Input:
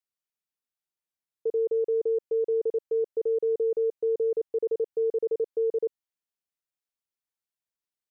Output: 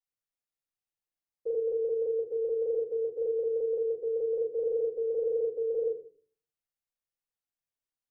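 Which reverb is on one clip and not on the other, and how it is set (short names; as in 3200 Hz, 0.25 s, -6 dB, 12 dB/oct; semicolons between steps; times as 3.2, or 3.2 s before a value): shoebox room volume 38 m³, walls mixed, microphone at 2.2 m; gain -15.5 dB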